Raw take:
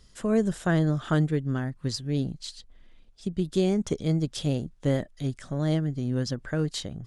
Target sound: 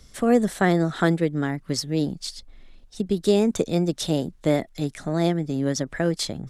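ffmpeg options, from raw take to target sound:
-filter_complex "[0:a]acrossover=split=170[s0][s1];[s0]acompressor=threshold=0.00794:ratio=6[s2];[s2][s1]amix=inputs=2:normalize=0,asetrate=48000,aresample=44100,volume=2"

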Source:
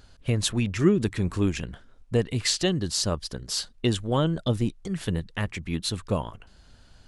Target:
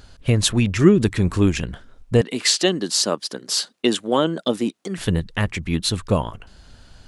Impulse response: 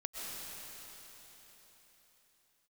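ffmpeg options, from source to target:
-filter_complex "[0:a]asettb=1/sr,asplit=3[s0][s1][s2];[s0]atrim=end=2.214[s3];[s1]atrim=start=2.21:end=4.98,asetpts=PTS-STARTPTS,afade=t=in:d=0.004:c=qsin,afade=t=out:st=2.766:d=0.004:c=qsin,highpass=f=220:w=0.5412,highpass=f=220:w=1.3066[s4];[s2]atrim=start=4.976[s5];[s3][s4]acrossfade=d=0.004:c1=hsin:c2=qsin[s6];[s6][s5]acrossfade=d=0.004:c1=qsin:c2=hsin,volume=2.24"

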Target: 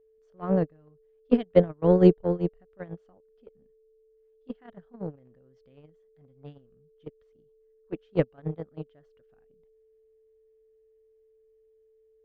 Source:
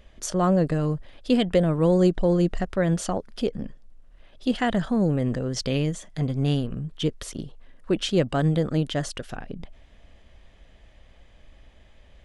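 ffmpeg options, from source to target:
-af "aeval=exprs='val(0)+0.0501*sin(2*PI*440*n/s)':c=same,lowpass=2200,agate=range=0.00891:threshold=0.158:ratio=16:detection=peak,volume=2.24"

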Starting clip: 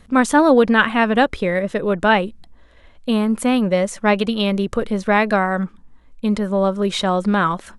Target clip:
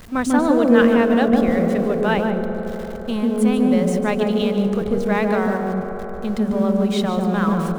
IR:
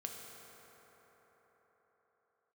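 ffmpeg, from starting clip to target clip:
-filter_complex "[0:a]aeval=exprs='val(0)+0.5*0.0335*sgn(val(0))':c=same,asplit=2[s0][s1];[s1]tiltshelf=f=650:g=9.5[s2];[1:a]atrim=start_sample=2205,adelay=146[s3];[s2][s3]afir=irnorm=-1:irlink=0,volume=1.19[s4];[s0][s4]amix=inputs=2:normalize=0,volume=0.422"

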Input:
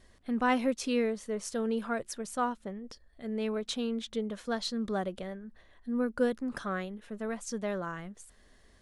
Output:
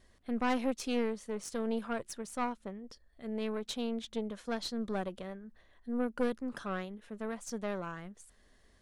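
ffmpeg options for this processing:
-af "aeval=exprs='(tanh(15.8*val(0)+0.7)-tanh(0.7))/15.8':c=same"

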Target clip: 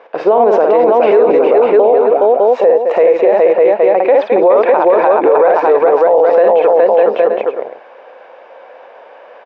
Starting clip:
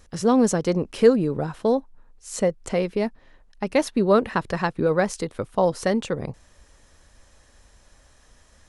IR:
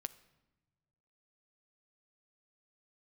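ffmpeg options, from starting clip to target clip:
-filter_complex "[0:a]equalizer=f=760:t=o:w=0.9:g=12.5,asplit=2[s0][s1];[s1]aecho=0:1:51|196|382|555|751|846:0.473|0.133|0.562|0.531|0.316|0.126[s2];[s0][s2]amix=inputs=2:normalize=0,asetrate=40517,aresample=44100,highpass=f=340:w=0.5412,highpass=f=340:w=1.3066,equalizer=f=520:t=q:w=4:g=8,equalizer=f=980:t=q:w=4:g=4,equalizer=f=2400:t=q:w=4:g=5,lowpass=f=2700:w=0.5412,lowpass=f=2700:w=1.3066,alimiter=level_in=4.47:limit=0.891:release=50:level=0:latency=1,volume=0.891"

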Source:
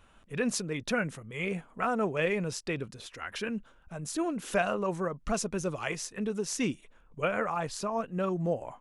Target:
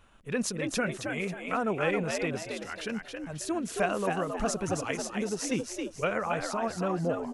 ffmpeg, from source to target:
-filter_complex "[0:a]atempo=1.2,asplit=5[s0][s1][s2][s3][s4];[s1]adelay=271,afreqshift=76,volume=0.562[s5];[s2]adelay=542,afreqshift=152,volume=0.191[s6];[s3]adelay=813,afreqshift=228,volume=0.0653[s7];[s4]adelay=1084,afreqshift=304,volume=0.0221[s8];[s0][s5][s6][s7][s8]amix=inputs=5:normalize=0"

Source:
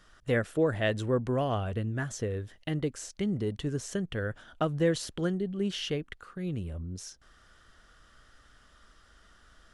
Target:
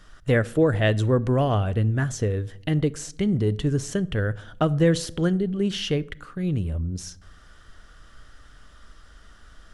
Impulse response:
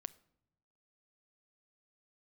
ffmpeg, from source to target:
-filter_complex "[0:a]asplit=2[s0][s1];[1:a]atrim=start_sample=2205,asetrate=43218,aresample=44100,lowshelf=f=150:g=8.5[s2];[s1][s2]afir=irnorm=-1:irlink=0,volume=4.73[s3];[s0][s3]amix=inputs=2:normalize=0,volume=0.473"

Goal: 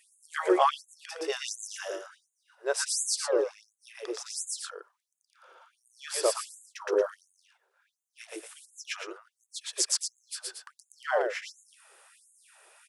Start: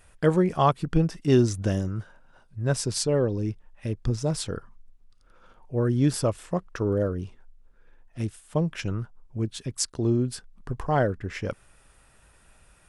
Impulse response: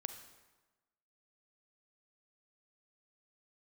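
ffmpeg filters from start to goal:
-af "aecho=1:1:119.5|230.3:1|0.447,afftfilt=real='re*gte(b*sr/1024,330*pow(6500/330,0.5+0.5*sin(2*PI*1.4*pts/sr)))':imag='im*gte(b*sr/1024,330*pow(6500/330,0.5+0.5*sin(2*PI*1.4*pts/sr)))':win_size=1024:overlap=0.75"

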